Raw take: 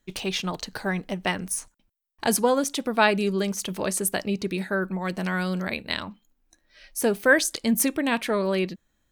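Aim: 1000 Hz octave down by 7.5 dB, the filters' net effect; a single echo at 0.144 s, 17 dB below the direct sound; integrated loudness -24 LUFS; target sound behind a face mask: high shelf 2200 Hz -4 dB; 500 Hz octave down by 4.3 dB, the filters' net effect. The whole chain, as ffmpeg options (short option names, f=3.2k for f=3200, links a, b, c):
-af "equalizer=f=500:t=o:g=-3,equalizer=f=1k:t=o:g=-8,highshelf=f=2.2k:g=-4,aecho=1:1:144:0.141,volume=4.5dB"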